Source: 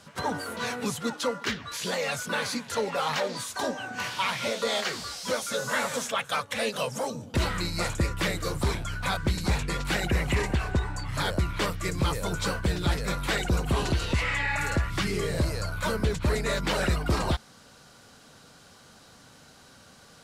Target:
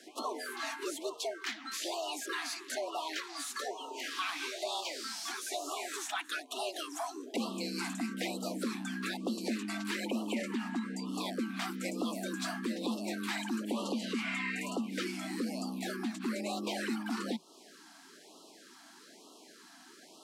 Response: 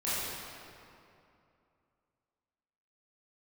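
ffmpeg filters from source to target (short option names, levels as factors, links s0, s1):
-af "afreqshift=160,acompressor=threshold=0.0178:ratio=2,afftfilt=real='re*(1-between(b*sr/1024,440*pow(1900/440,0.5+0.5*sin(2*PI*1.1*pts/sr))/1.41,440*pow(1900/440,0.5+0.5*sin(2*PI*1.1*pts/sr))*1.41))':imag='im*(1-between(b*sr/1024,440*pow(1900/440,0.5+0.5*sin(2*PI*1.1*pts/sr))/1.41,440*pow(1900/440,0.5+0.5*sin(2*PI*1.1*pts/sr))*1.41))':win_size=1024:overlap=0.75,volume=0.794"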